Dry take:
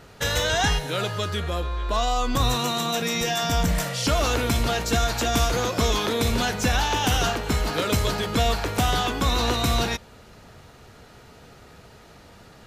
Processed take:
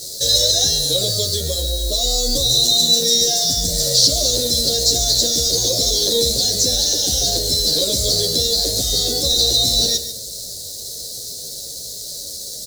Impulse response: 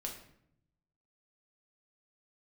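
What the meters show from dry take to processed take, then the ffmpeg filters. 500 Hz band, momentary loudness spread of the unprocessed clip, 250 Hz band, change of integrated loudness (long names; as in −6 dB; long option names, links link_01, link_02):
+3.0 dB, 4 LU, −2.5 dB, +8.5 dB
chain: -filter_complex "[0:a]alimiter=limit=-18.5dB:level=0:latency=1,acrossover=split=4700[link_01][link_02];[link_02]acompressor=threshold=-46dB:ratio=4:attack=1:release=60[link_03];[link_01][link_03]amix=inputs=2:normalize=0,lowshelf=frequency=200:gain=3.5,aecho=1:1:141:0.237,acrusher=bits=7:mix=0:aa=0.000001,firequalizer=gain_entry='entry(230,0);entry(560,9);entry(1000,-29);entry(1800,-16);entry(2600,-24);entry(4000,11);entry(15000,-3)':delay=0.05:min_phase=1,asplit=2[link_04][link_05];[1:a]atrim=start_sample=2205,asetrate=35280,aresample=44100[link_06];[link_05][link_06]afir=irnorm=-1:irlink=0,volume=-10.5dB[link_07];[link_04][link_07]amix=inputs=2:normalize=0,aeval=exprs='0.473*(cos(1*acos(clip(val(0)/0.473,-1,1)))-cos(1*PI/2))+0.0376*(cos(2*acos(clip(val(0)/0.473,-1,1)))-cos(2*PI/2))+0.0211*(cos(4*acos(clip(val(0)/0.473,-1,1)))-cos(4*PI/2))':channel_layout=same,crystalizer=i=8.5:c=0,asplit=2[link_08][link_09];[link_09]adelay=10.3,afreqshift=-1.3[link_10];[link_08][link_10]amix=inputs=2:normalize=1"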